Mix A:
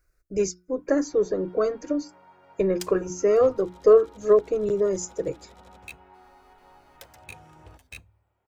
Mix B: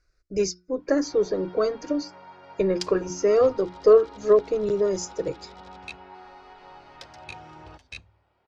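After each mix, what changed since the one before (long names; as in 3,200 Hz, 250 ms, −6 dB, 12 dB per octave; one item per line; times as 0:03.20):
first sound +7.0 dB
master: add low-pass with resonance 4,900 Hz, resonance Q 2.4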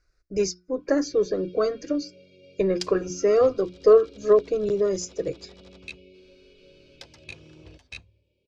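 first sound: add linear-phase brick-wall band-stop 610–2,200 Hz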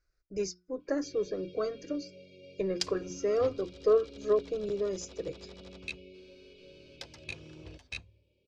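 speech −9.0 dB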